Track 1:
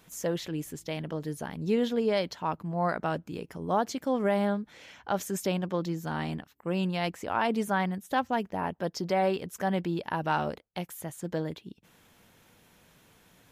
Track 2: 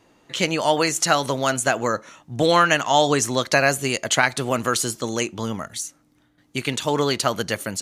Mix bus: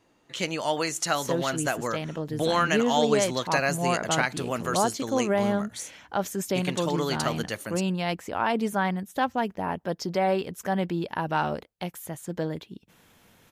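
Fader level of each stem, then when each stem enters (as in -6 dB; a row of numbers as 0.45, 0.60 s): +2.0, -7.5 dB; 1.05, 0.00 s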